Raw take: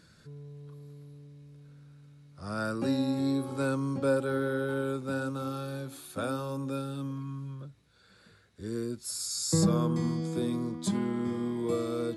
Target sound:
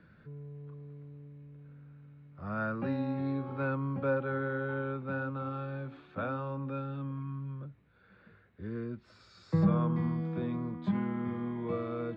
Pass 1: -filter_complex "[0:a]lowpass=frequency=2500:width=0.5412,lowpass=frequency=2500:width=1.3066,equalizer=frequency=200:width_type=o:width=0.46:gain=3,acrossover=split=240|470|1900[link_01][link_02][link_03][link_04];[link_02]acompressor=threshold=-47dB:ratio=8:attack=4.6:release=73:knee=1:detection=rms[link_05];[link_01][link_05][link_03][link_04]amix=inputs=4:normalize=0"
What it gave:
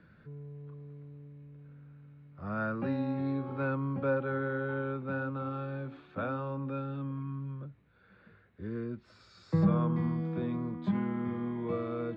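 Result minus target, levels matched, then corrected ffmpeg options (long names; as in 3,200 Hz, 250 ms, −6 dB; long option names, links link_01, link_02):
downward compressor: peak gain reduction −6.5 dB
-filter_complex "[0:a]lowpass=frequency=2500:width=0.5412,lowpass=frequency=2500:width=1.3066,equalizer=frequency=200:width_type=o:width=0.46:gain=3,acrossover=split=240|470|1900[link_01][link_02][link_03][link_04];[link_02]acompressor=threshold=-54.5dB:ratio=8:attack=4.6:release=73:knee=1:detection=rms[link_05];[link_01][link_05][link_03][link_04]amix=inputs=4:normalize=0"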